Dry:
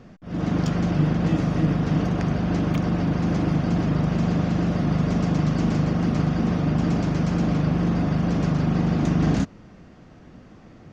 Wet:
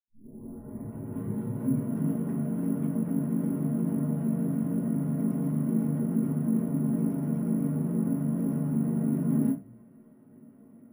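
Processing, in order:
turntable start at the beginning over 1.92 s
low-shelf EQ 140 Hz +6.5 dB
convolution reverb, pre-delay 76 ms
bad sample-rate conversion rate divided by 4×, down filtered, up hold
level +6.5 dB

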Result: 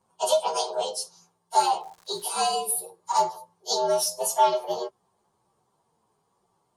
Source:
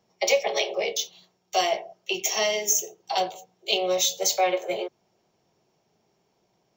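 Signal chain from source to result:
partials spread apart or drawn together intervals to 115%
0:01.80–0:02.44: surface crackle 310 per second −42 dBFS
graphic EQ with 15 bands 1,000 Hz +8 dB, 2,500 Hz −3 dB, 6,300 Hz +3 dB

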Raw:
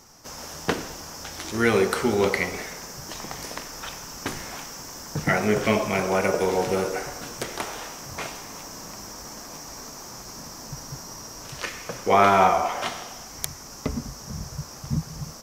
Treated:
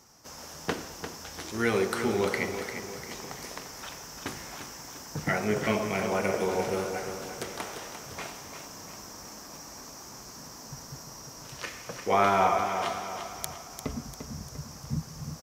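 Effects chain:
high-pass filter 44 Hz
on a send: repeating echo 347 ms, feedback 47%, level −8.5 dB
on the sum: level −6 dB

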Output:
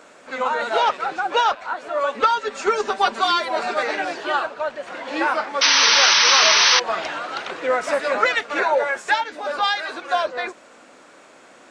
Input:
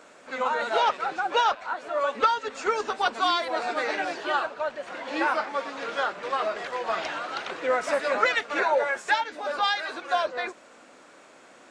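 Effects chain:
0:02.30–0:03.83: comb filter 5.1 ms, depth 71%
0:05.61–0:06.80: sound drawn into the spectrogram noise 840–6,200 Hz −19 dBFS
level +4 dB

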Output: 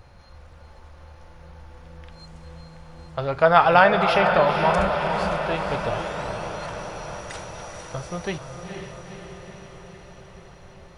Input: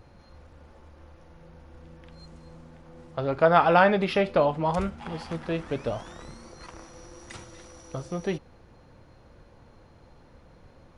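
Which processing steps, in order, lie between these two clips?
parametric band 280 Hz −10.5 dB 1.4 octaves
feedback delay with all-pass diffusion 479 ms, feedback 68%, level −6 dB
level +5.5 dB

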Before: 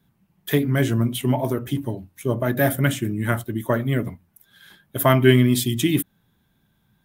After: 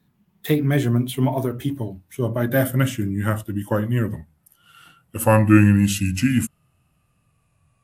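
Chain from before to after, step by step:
gliding playback speed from 108% → 72%
harmonic and percussive parts rebalanced harmonic +4 dB
level −2.5 dB

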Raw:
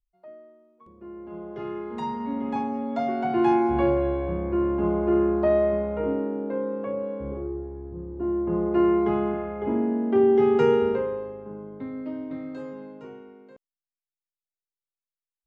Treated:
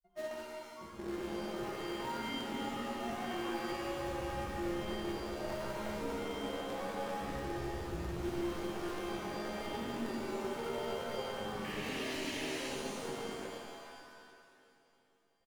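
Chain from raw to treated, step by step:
downward compressor, threshold −35 dBFS, peak gain reduction 18 dB
brickwall limiter −39 dBFS, peak gain reduction 12.5 dB
sound drawn into the spectrogram noise, 0:11.57–0:12.64, 1,600–3,200 Hz −51 dBFS
in parallel at −7.5 dB: bit reduction 7 bits
on the sum: granular cloud, pitch spread up and down by 0 semitones
repeating echo 469 ms, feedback 52%, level −19 dB
regular buffer underruns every 0.12 s, samples 1,024, repeat, from 0:00.92
reverb with rising layers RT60 1.5 s, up +7 semitones, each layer −2 dB, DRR 0.5 dB
level +1 dB

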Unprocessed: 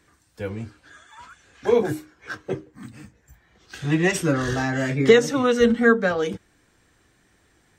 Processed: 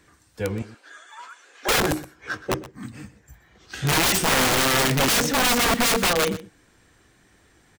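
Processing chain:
0:00.62–0:01.74: high-pass filter 370 Hz 24 dB per octave
in parallel at −6.5 dB: soft clipping −14 dBFS, distortion −11 dB
0:03.76–0:04.88: on the sum: double-tracking delay 16 ms −3 dB
wrap-around overflow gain 15 dB
single-tap delay 122 ms −16.5 dB

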